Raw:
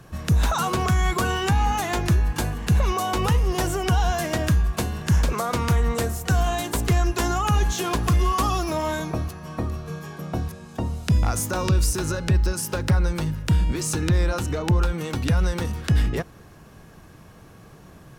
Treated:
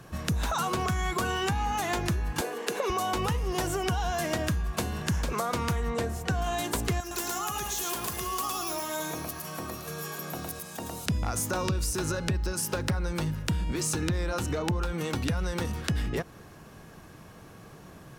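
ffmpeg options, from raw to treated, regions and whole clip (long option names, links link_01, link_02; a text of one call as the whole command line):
ffmpeg -i in.wav -filter_complex "[0:a]asettb=1/sr,asplit=3[link_01][link_02][link_03];[link_01]atrim=end=2.414[link_04];[link_02]atrim=start=2.41:end=2.9,asetpts=PTS-STARTPTS,afade=type=in:duration=0.004:curve=qsin,afade=type=out:start_time=0.486:duration=0.004:curve=qsin,highpass=frequency=300:width=0.5412,highpass=frequency=300:width=1.3066,equalizer=frequency=450:width_type=o:width=0.44:gain=10.5[link_05];[link_03]atrim=start=2.896[link_06];[link_04][link_05]acrossfade=duration=0.004:curve1=hsin:curve2=qsin[link_07];[link_07][link_06]acrossfade=duration=0.004:curve1=qsin:curve2=hsin,asettb=1/sr,asplit=3[link_08][link_09][link_10];[link_08]atrim=end=5.904[link_11];[link_09]atrim=start=5.9:end=6.42,asetpts=PTS-STARTPTS,afade=type=in:duration=0.004:curve=qsin,afade=type=out:start_time=0.516:duration=0.004:curve=qsin,lowpass=frequency=3300:poles=1,bandreject=frequency=1300:width=11[link_12];[link_10]atrim=start=6.416[link_13];[link_11][link_12]acrossfade=duration=0.004:curve1=hsin:curve2=qsin[link_14];[link_14][link_13]acrossfade=duration=0.004:curve1=qsin:curve2=hsin,asettb=1/sr,asplit=3[link_15][link_16][link_17];[link_15]atrim=end=7.004[link_18];[link_16]atrim=start=7:end=11.06,asetpts=PTS-STARTPTS,afade=type=in:duration=0.004:curve=qsin,afade=type=out:start_time=4.056:duration=0.004:curve=qsin,aemphasis=mode=production:type=bsi,acompressor=threshold=-34dB:ratio=2.5:attack=3.2:release=140:knee=1:detection=peak,aecho=1:1:110:0.708,atrim=end_sample=179046[link_19];[link_17]atrim=start=11.056[link_20];[link_18][link_19]acrossfade=duration=0.004:curve1=hsin:curve2=qsin[link_21];[link_21][link_20]acrossfade=duration=0.004:curve1=qsin:curve2=hsin,lowshelf=frequency=110:gain=-6,acompressor=threshold=-26dB:ratio=4" out.wav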